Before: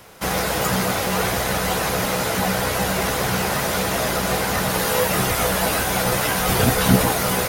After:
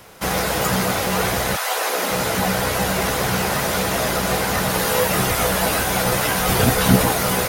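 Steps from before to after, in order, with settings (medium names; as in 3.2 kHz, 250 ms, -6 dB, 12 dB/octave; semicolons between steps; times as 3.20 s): 1.55–2.10 s: high-pass 810 Hz -> 210 Hz 24 dB/octave; trim +1 dB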